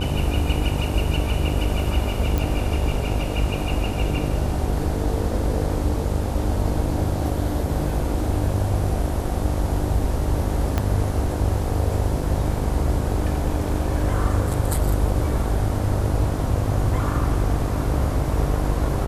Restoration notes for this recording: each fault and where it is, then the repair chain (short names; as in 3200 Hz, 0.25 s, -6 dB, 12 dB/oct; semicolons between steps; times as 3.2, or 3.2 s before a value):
buzz 50 Hz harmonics 19 -26 dBFS
2.38 pop
10.78 pop -9 dBFS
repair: de-click; de-hum 50 Hz, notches 19